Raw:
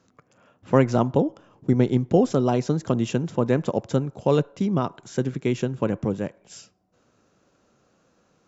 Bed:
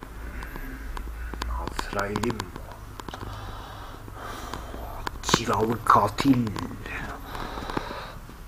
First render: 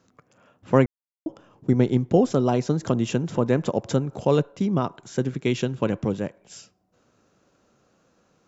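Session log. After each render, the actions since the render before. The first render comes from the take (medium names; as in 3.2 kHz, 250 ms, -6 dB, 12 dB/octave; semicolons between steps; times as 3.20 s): 0.86–1.26 s: mute; 2.71–4.25 s: upward compressor, threshold -24 dBFS; 5.29–6.20 s: dynamic bell 3.7 kHz, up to +7 dB, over -50 dBFS, Q 0.93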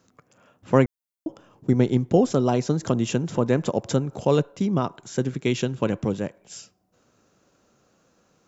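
treble shelf 6.6 kHz +7 dB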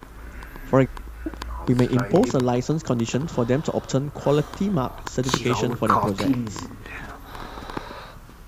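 add bed -2 dB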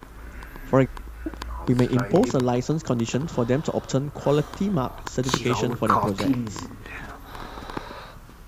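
trim -1 dB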